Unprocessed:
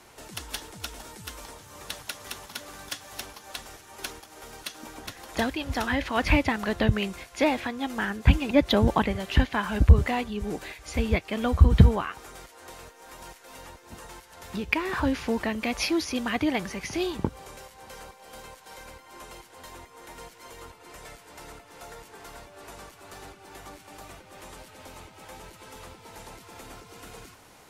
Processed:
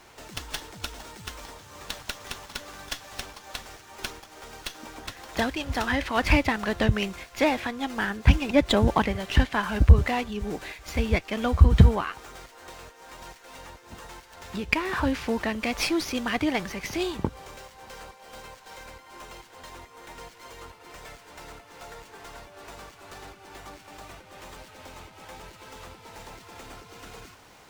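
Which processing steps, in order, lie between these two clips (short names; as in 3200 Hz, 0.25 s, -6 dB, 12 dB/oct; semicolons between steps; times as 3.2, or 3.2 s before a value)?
bell 240 Hz -2.5 dB 3 oct; running maximum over 3 samples; gain +2 dB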